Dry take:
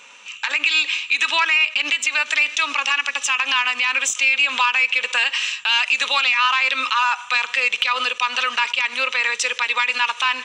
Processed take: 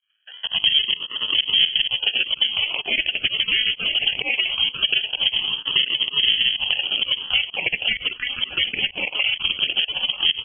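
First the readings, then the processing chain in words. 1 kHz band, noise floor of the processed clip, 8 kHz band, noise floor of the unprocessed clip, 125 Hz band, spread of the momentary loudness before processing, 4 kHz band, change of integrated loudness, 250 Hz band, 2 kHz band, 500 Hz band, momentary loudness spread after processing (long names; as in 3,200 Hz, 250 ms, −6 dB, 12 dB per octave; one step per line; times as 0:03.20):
−18.5 dB, −42 dBFS, below −40 dB, −39 dBFS, can't be measured, 4 LU, +5.0 dB, −1.5 dB, +1.0 dB, −7.0 dB, −4.0 dB, 5 LU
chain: time-frequency cells dropped at random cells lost 29%
parametric band 1,300 Hz −6.5 dB 2.5 octaves
in parallel at −2 dB: speech leveller 0.5 s
on the sum: noise gate with hold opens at −28 dBFS
sample-and-hold swept by an LFO 36×, swing 100% 0.21 Hz
fake sidechain pumping 128 BPM, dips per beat 1, −23 dB, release 120 ms
single-tap delay 938 ms −14 dB
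phaser swept by the level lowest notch 480 Hz, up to 2,100 Hz, full sweep at −16 dBFS
voice inversion scrambler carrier 3,200 Hz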